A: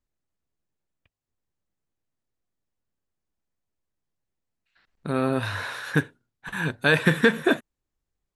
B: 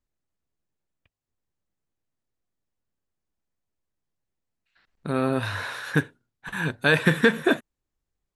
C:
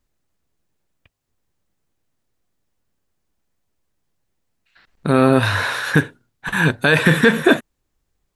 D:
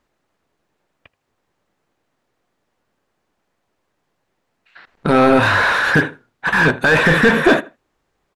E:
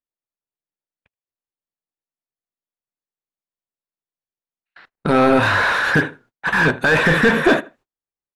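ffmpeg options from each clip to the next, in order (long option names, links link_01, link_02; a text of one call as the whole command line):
ffmpeg -i in.wav -af anull out.wav
ffmpeg -i in.wav -af "alimiter=level_in=12dB:limit=-1dB:release=50:level=0:latency=1,volume=-1dB" out.wav
ffmpeg -i in.wav -filter_complex "[0:a]asplit=2[link_01][link_02];[link_02]adelay=79,lowpass=frequency=3700:poles=1,volume=-24dB,asplit=2[link_03][link_04];[link_04]adelay=79,lowpass=frequency=3700:poles=1,volume=0.21[link_05];[link_01][link_03][link_05]amix=inputs=3:normalize=0,asplit=2[link_06][link_07];[link_07]highpass=frequency=720:poles=1,volume=22dB,asoftclip=type=tanh:threshold=-1.5dB[link_08];[link_06][link_08]amix=inputs=2:normalize=0,lowpass=frequency=1100:poles=1,volume=-6dB" out.wav
ffmpeg -i in.wav -af "agate=range=-30dB:threshold=-45dB:ratio=16:detection=peak,volume=-2dB" out.wav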